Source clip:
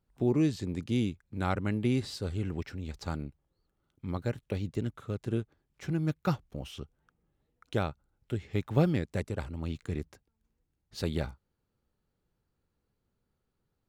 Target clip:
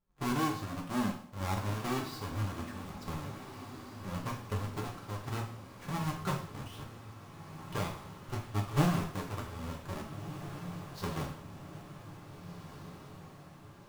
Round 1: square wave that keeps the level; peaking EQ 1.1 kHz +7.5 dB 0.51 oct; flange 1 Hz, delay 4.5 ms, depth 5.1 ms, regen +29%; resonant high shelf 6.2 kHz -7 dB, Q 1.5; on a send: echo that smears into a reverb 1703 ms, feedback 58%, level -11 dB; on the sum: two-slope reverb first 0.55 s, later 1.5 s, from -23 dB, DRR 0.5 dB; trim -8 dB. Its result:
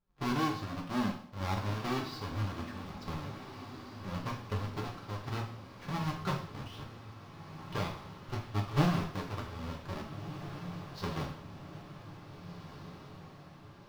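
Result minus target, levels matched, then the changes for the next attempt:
8 kHz band -5.5 dB
remove: resonant high shelf 6.2 kHz -7 dB, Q 1.5

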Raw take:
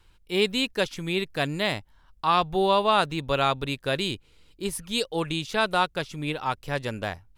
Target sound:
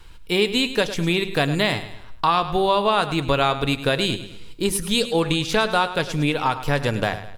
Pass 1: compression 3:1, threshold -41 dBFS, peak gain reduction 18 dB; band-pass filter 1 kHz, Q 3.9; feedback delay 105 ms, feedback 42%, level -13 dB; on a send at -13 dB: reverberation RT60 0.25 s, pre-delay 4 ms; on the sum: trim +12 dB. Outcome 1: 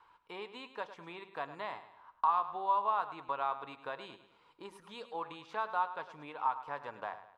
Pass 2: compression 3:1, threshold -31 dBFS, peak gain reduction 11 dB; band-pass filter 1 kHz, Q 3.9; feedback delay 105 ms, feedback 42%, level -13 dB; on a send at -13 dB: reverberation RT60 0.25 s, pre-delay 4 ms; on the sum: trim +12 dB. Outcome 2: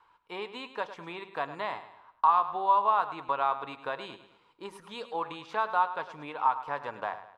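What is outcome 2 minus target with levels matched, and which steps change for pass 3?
1 kHz band +5.5 dB
remove: band-pass filter 1 kHz, Q 3.9

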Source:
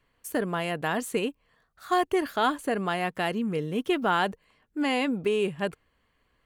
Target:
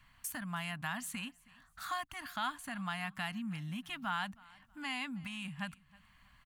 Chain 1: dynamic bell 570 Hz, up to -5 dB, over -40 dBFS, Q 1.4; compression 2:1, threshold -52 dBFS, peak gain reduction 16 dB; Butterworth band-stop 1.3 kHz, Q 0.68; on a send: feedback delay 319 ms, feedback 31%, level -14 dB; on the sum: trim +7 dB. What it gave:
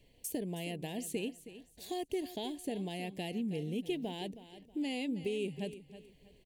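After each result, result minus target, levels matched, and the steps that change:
500 Hz band +14.5 dB; echo-to-direct +9.5 dB
change: Butterworth band-stop 420 Hz, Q 0.68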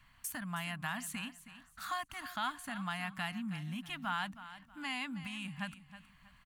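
echo-to-direct +9.5 dB
change: feedback delay 319 ms, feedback 31%, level -23.5 dB

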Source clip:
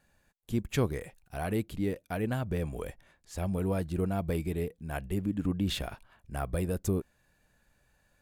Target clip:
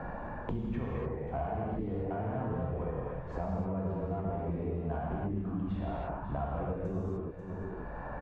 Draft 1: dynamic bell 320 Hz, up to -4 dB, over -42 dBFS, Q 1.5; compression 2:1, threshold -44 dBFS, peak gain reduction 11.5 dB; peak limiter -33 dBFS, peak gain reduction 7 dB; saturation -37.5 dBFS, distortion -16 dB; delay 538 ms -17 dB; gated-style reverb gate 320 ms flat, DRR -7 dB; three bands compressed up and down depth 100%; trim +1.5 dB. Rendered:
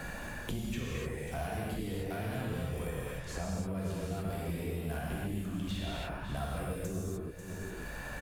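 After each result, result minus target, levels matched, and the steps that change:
saturation: distortion +9 dB; 1 kHz band -3.0 dB
change: saturation -31.5 dBFS, distortion -25 dB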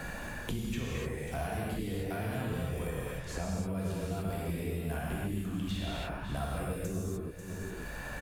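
1 kHz band -3.0 dB
add after dynamic bell: resonant low-pass 940 Hz, resonance Q 1.9

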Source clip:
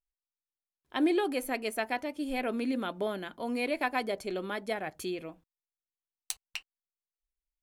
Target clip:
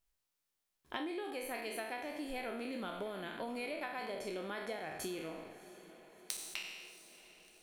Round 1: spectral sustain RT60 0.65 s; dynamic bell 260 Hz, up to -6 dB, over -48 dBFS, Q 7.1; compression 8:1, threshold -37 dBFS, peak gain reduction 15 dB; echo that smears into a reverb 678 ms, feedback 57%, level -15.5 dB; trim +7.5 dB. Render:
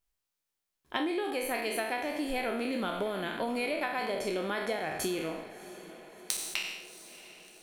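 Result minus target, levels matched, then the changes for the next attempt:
compression: peak gain reduction -8.5 dB
change: compression 8:1, threshold -47 dBFS, peak gain reduction 24 dB

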